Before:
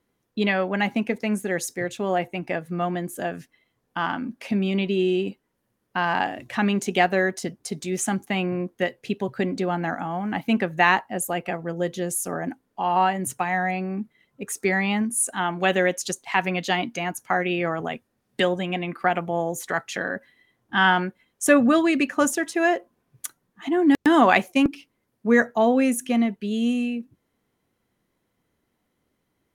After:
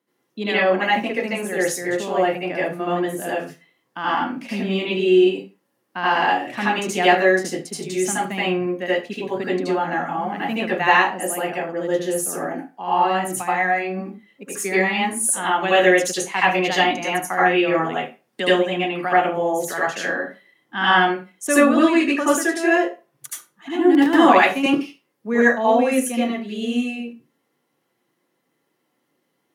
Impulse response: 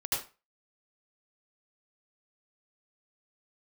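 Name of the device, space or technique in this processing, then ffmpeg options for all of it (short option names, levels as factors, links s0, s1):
far laptop microphone: -filter_complex "[1:a]atrim=start_sample=2205[s0];[0:a][s0]afir=irnorm=-1:irlink=0,highpass=f=170:w=0.5412,highpass=f=170:w=1.3066,dynaudnorm=f=720:g=11:m=3.76,volume=0.891"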